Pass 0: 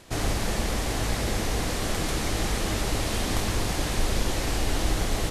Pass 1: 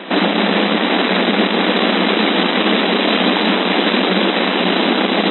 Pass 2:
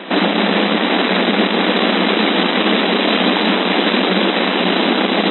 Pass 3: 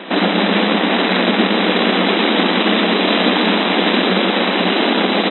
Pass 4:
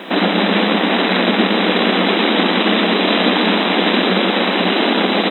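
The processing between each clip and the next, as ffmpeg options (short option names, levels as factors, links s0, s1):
-filter_complex "[0:a]acrossover=split=260|3000[s0][s1][s2];[s1]acompressor=threshold=0.0126:ratio=2[s3];[s0][s3][s2]amix=inputs=3:normalize=0,aeval=exprs='0.237*sin(PI/2*3.98*val(0)/0.237)':c=same,afftfilt=real='re*between(b*sr/4096,180,4000)':imag='im*between(b*sr/4096,180,4000)':win_size=4096:overlap=0.75,volume=2.24"
-af anull
-af "aecho=1:1:118:0.531,volume=0.891"
-af "acrusher=bits=8:mix=0:aa=0.000001"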